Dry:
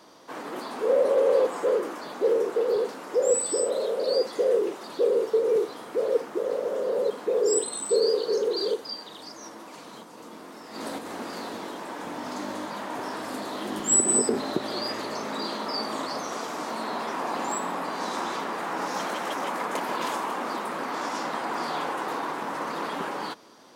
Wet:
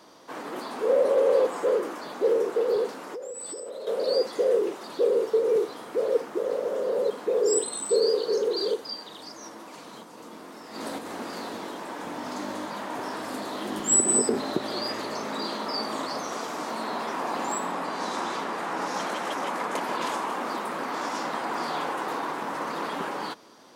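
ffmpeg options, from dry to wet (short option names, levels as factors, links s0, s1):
-filter_complex "[0:a]asettb=1/sr,asplit=3[s0][s1][s2];[s0]atrim=end=3.044[s3];[s1]atrim=start=3.04:end=3.87,asetpts=PTS-STARTPTS,afade=t=in:d=0.004:c=qsin,afade=t=out:st=0.826:d=0.004:c=qsin,acompressor=threshold=0.0224:ratio=16:attack=3.2:release=140:knee=1:detection=peak[s4];[s2]atrim=start=3.866[s5];[s3][s4]acrossfade=d=0.004:c1=hsin:c2=qsin[s6];[s6][s5]acrossfade=d=0.004:c1=qsin:c2=hsin,asettb=1/sr,asplit=3[s7][s8][s9];[s7]atrim=end=17.684[s10];[s8]atrim=start=17.68:end=20.32,asetpts=PTS-STARTPTS,afade=t=in:d=0.004:c=qsin,afade=t=out:st=2.636:d=0.004:c=qsin,lowpass=12000[s11];[s9]atrim=start=20.316[s12];[s10][s11]acrossfade=d=0.004:c1=hsin:c2=qsin[s13];[s13][s12]acrossfade=d=0.004:c1=qsin:c2=hsin"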